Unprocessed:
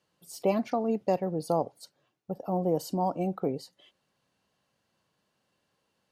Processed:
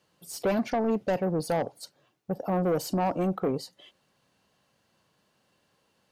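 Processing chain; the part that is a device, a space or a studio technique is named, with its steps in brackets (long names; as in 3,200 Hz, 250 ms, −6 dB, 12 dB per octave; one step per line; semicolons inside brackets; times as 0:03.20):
saturation between pre-emphasis and de-emphasis (high-shelf EQ 3,900 Hz +11.5 dB; soft clipping −26.5 dBFS, distortion −9 dB; high-shelf EQ 3,900 Hz −11.5 dB)
level +6 dB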